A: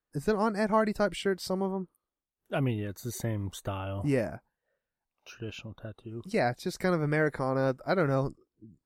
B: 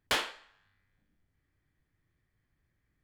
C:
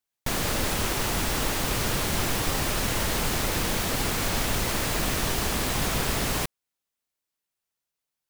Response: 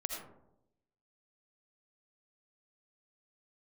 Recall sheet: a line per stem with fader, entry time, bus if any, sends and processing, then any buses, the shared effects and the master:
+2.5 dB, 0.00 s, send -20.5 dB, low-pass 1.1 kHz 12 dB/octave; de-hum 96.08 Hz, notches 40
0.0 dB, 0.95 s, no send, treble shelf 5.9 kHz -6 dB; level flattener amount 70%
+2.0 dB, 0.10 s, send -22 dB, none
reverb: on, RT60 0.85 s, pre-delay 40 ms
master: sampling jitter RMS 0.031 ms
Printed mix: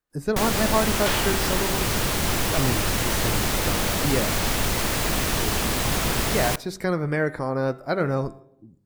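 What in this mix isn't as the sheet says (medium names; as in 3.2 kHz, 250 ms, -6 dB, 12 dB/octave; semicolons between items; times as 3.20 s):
stem A: missing low-pass 1.1 kHz 12 dB/octave; master: missing sampling jitter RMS 0.031 ms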